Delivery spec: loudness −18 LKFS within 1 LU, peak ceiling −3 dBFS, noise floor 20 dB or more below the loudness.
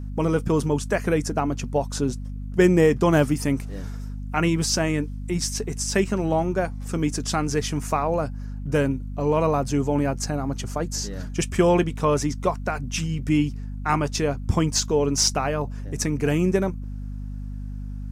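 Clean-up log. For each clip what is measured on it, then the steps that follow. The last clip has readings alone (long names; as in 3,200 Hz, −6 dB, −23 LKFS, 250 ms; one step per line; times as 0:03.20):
mains hum 50 Hz; hum harmonics up to 250 Hz; level of the hum −29 dBFS; integrated loudness −23.5 LKFS; sample peak −6.5 dBFS; target loudness −18.0 LKFS
→ mains-hum notches 50/100/150/200/250 Hz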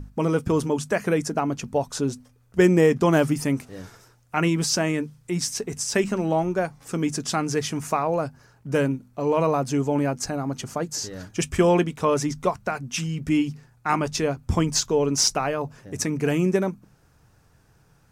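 mains hum none found; integrated loudness −24.0 LKFS; sample peak −6.5 dBFS; target loudness −18.0 LKFS
→ level +6 dB
brickwall limiter −3 dBFS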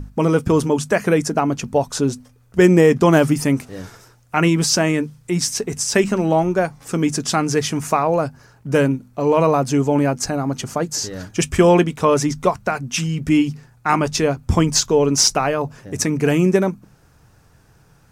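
integrated loudness −18.5 LKFS; sample peak −3.0 dBFS; background noise floor −53 dBFS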